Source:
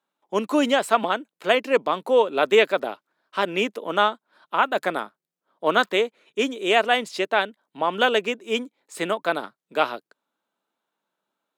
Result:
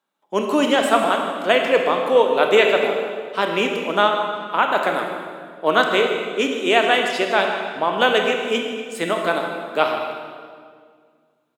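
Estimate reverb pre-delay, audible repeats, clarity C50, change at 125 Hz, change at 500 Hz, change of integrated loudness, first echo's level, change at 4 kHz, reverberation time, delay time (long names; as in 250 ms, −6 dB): 23 ms, 1, 3.5 dB, +5.0 dB, +4.0 dB, +3.5 dB, −13.0 dB, +4.0 dB, 2.0 s, 155 ms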